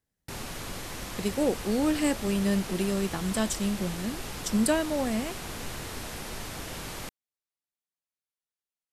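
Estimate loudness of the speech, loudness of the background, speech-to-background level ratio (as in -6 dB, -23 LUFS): -29.0 LUFS, -37.5 LUFS, 8.5 dB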